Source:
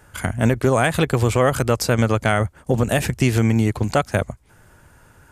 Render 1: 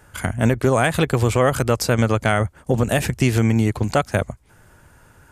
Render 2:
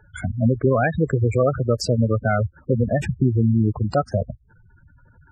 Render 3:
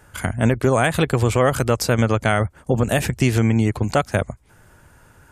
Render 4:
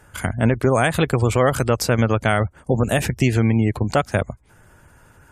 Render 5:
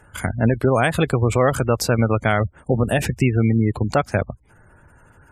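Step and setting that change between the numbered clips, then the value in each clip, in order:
spectral gate, under each frame's peak: -60 dB, -10 dB, -45 dB, -35 dB, -25 dB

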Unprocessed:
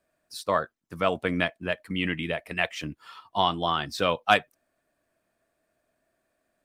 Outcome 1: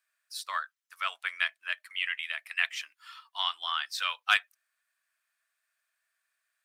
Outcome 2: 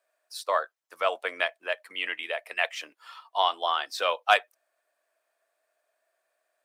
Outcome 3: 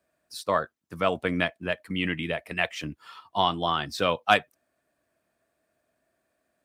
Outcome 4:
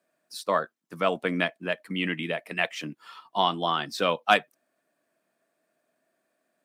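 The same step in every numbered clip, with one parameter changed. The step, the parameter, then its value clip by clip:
high-pass, cutoff frequency: 1.3 kHz, 530 Hz, 45 Hz, 160 Hz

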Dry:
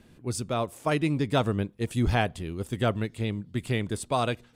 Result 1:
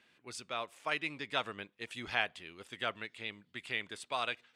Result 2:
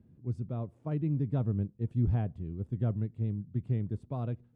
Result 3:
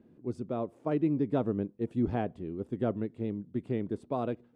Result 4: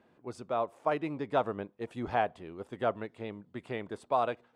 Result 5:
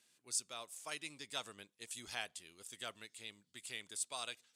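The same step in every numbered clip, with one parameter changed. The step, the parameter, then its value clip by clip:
band-pass filter, frequency: 2.4 kHz, 120 Hz, 310 Hz, 800 Hz, 7.4 kHz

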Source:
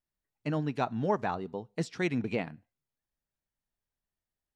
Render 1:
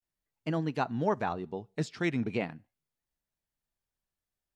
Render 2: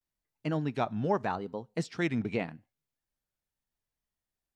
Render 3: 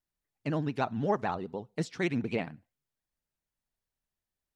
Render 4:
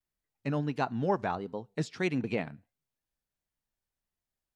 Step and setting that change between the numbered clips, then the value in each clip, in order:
vibrato, rate: 0.42 Hz, 0.82 Hz, 16 Hz, 1.5 Hz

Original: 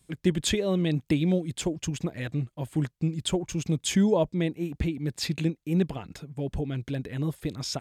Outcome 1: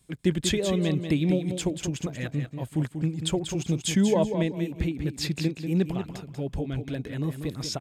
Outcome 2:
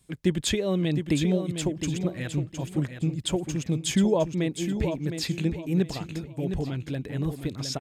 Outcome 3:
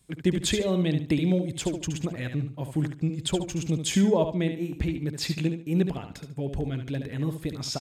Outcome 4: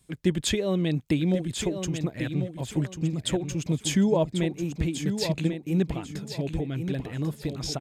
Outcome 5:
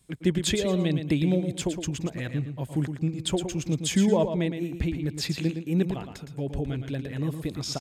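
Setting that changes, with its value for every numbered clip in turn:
feedback delay, time: 189 ms, 712 ms, 72 ms, 1093 ms, 114 ms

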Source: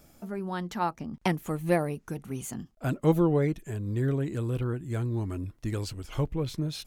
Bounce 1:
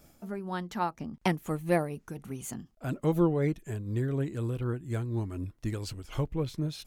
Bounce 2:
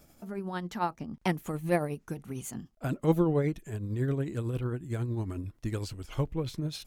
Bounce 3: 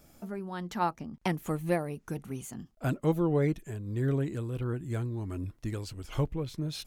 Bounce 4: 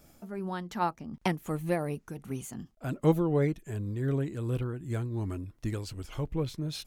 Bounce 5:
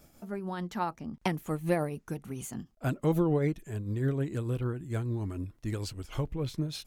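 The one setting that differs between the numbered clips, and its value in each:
tremolo, rate: 4.1 Hz, 11 Hz, 1.5 Hz, 2.7 Hz, 6.7 Hz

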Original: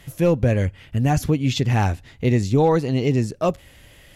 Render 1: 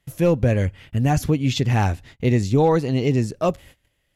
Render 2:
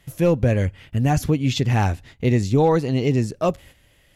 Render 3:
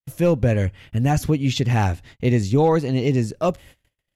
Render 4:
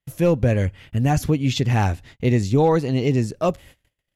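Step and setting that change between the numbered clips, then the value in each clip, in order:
gate, range: -22 dB, -9 dB, -58 dB, -38 dB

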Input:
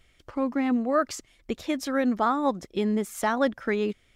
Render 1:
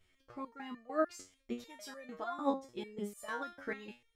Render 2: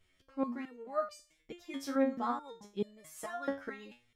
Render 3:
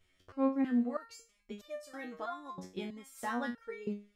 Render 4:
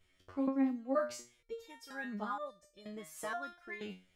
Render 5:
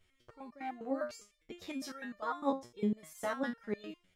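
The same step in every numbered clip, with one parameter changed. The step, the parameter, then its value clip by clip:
resonator arpeggio, rate: 6.7 Hz, 4.6 Hz, 3.1 Hz, 2.1 Hz, 9.9 Hz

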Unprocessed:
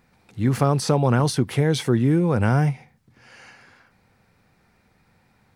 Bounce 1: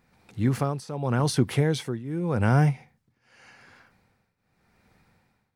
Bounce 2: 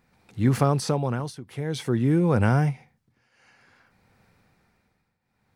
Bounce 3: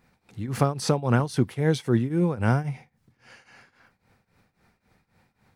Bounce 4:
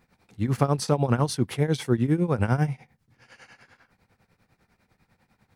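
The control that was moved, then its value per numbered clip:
tremolo, rate: 0.86 Hz, 0.53 Hz, 3.7 Hz, 10 Hz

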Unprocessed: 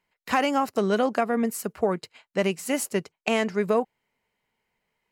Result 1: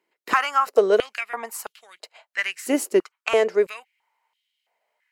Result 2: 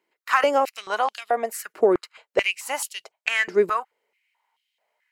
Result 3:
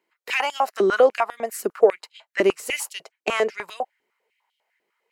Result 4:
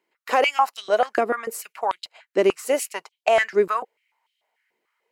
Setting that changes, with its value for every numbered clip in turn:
step-sequenced high-pass, rate: 3 Hz, 4.6 Hz, 10 Hz, 6.8 Hz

